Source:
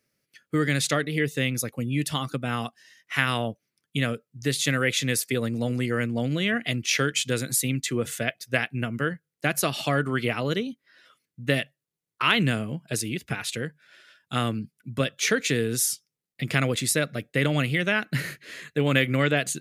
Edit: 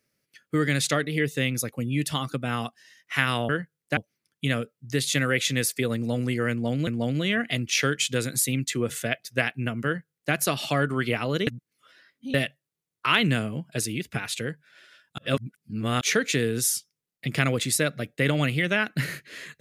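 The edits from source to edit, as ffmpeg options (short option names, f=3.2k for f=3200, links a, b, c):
-filter_complex "[0:a]asplit=8[a][b][c][d][e][f][g][h];[a]atrim=end=3.492[i];[b]atrim=start=9.008:end=9.492[j];[c]atrim=start=3.488:end=6.392[k];[d]atrim=start=6.028:end=10.632[l];[e]atrim=start=10.628:end=11.502,asetpts=PTS-STARTPTS,areverse[m];[f]atrim=start=11.498:end=14.342[n];[g]atrim=start=14.338:end=15.172,asetpts=PTS-STARTPTS,areverse[o];[h]atrim=start=15.168[p];[i][j]acrossfade=d=0.004:c1=hsin:c2=hsin[q];[q][k]acrossfade=d=0.004:c1=hsin:c2=hsin[r];[r][l]acrossfade=d=0.004:c1=hsin:c2=hsin[s];[s][m]acrossfade=d=0.004:c1=hsin:c2=hsin[t];[t][n]acrossfade=d=0.004:c1=hsin:c2=hsin[u];[u][o]acrossfade=d=0.004:c1=hsin:c2=hsin[v];[v][p]acrossfade=d=0.004:c1=hsin:c2=hsin"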